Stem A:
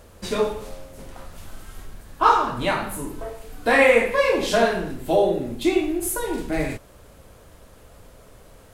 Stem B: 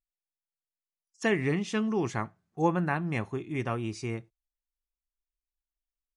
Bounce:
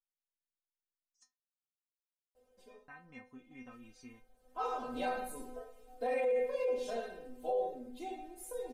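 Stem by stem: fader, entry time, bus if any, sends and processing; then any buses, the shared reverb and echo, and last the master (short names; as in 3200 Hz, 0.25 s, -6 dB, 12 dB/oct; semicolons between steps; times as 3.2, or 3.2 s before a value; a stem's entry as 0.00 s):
3.21 s -15 dB -> 3.77 s -2.5 dB -> 5.47 s -2.5 dB -> 5.7 s -9.5 dB, 2.35 s, no send, band shelf 530 Hz +11.5 dB 1.3 oct; auto duck -16 dB, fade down 0.40 s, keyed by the second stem
-3.0 dB, 0.00 s, muted 1.23–2.88, no send, LPF 8000 Hz; compressor, threshold -30 dBFS, peak gain reduction 10.5 dB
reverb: off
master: metallic resonator 250 Hz, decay 0.26 s, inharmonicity 0.002; limiter -26 dBFS, peak gain reduction 11.5 dB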